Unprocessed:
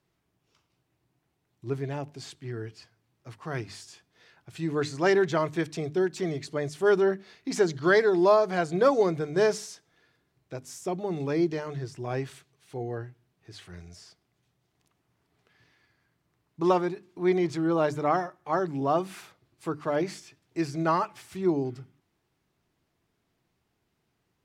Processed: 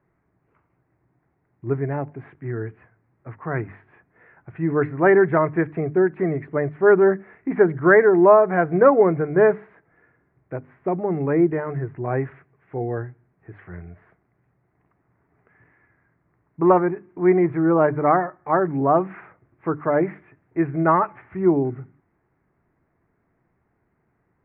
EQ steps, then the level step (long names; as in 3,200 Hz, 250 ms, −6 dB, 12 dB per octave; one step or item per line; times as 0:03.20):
Butterworth low-pass 2,100 Hz 48 dB per octave
+7.5 dB